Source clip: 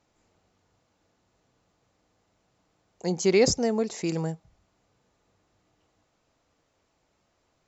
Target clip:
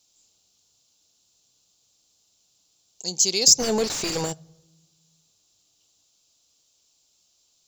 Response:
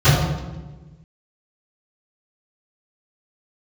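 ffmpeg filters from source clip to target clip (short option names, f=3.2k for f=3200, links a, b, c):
-filter_complex "[0:a]aexciter=amount=8.8:drive=8.7:freq=3k,asplit=3[a][b][c];[a]afade=t=out:st=3.58:d=0.02[d];[b]asplit=2[e][f];[f]highpass=f=720:p=1,volume=32dB,asoftclip=type=tanh:threshold=0dB[g];[e][g]amix=inputs=2:normalize=0,lowpass=f=1.2k:p=1,volume=-6dB,afade=t=in:st=3.58:d=0.02,afade=t=out:st=4.32:d=0.02[h];[c]afade=t=in:st=4.32:d=0.02[i];[d][h][i]amix=inputs=3:normalize=0,asplit=2[j][k];[1:a]atrim=start_sample=2205,lowshelf=f=450:g=-11.5[l];[k][l]afir=irnorm=-1:irlink=0,volume=-47.5dB[m];[j][m]amix=inputs=2:normalize=0,volume=-10dB"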